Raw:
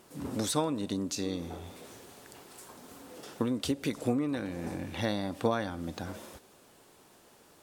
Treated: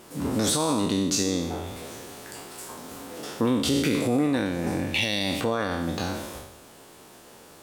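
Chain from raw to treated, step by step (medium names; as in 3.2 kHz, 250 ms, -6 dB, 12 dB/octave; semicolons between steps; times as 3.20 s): spectral sustain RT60 0.85 s; 4.94–5.41 s: resonant high shelf 1.9 kHz +8 dB, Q 3; peak limiter -21 dBFS, peak gain reduction 10.5 dB; trim +7.5 dB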